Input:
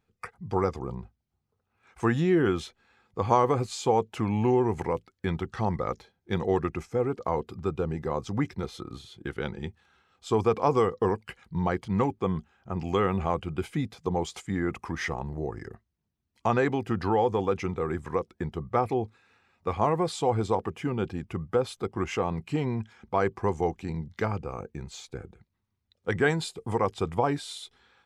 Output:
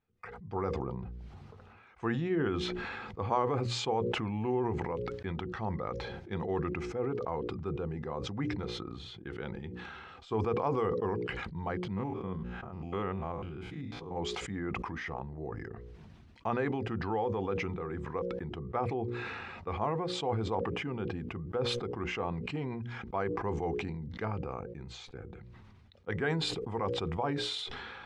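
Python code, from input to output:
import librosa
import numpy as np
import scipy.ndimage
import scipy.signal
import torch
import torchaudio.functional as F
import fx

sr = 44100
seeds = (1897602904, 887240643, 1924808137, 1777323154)

y = fx.spec_steps(x, sr, hold_ms=100, at=(11.96, 14.15), fade=0.02)
y = scipy.signal.sosfilt(scipy.signal.butter(2, 3400.0, 'lowpass', fs=sr, output='sos'), y)
y = fx.hum_notches(y, sr, base_hz=60, count=9)
y = fx.sustainer(y, sr, db_per_s=23.0)
y = y * librosa.db_to_amplitude(-8.0)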